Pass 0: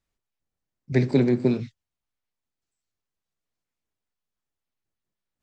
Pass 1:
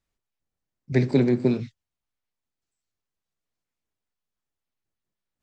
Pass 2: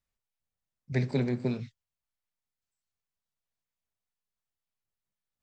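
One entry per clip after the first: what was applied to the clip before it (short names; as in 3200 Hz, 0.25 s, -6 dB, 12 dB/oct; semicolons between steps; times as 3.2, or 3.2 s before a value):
nothing audible
bell 320 Hz -9 dB 0.66 oct; gain -5 dB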